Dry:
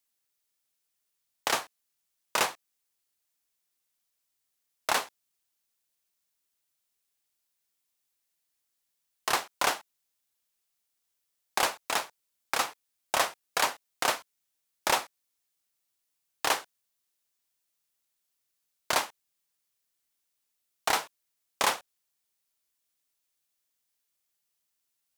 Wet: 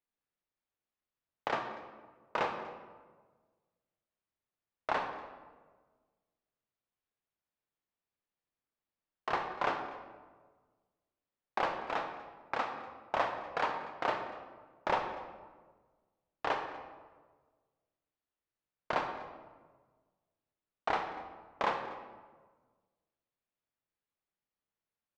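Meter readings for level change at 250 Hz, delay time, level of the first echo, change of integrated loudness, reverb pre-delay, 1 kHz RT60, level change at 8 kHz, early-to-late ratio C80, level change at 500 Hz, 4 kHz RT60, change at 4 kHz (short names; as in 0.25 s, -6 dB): -0.5 dB, 0.242 s, -20.5 dB, -7.0 dB, 29 ms, 1.3 s, under -25 dB, 8.0 dB, -1.5 dB, 0.85 s, -14.5 dB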